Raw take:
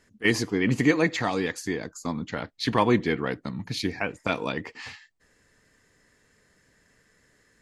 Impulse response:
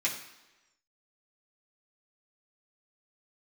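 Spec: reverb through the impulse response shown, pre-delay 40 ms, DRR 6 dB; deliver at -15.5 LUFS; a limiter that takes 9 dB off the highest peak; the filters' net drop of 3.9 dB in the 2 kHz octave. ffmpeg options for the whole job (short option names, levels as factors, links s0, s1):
-filter_complex "[0:a]equalizer=f=2000:t=o:g=-4.5,alimiter=limit=0.141:level=0:latency=1,asplit=2[s0][s1];[1:a]atrim=start_sample=2205,adelay=40[s2];[s1][s2]afir=irnorm=-1:irlink=0,volume=0.211[s3];[s0][s3]amix=inputs=2:normalize=0,volume=5.31"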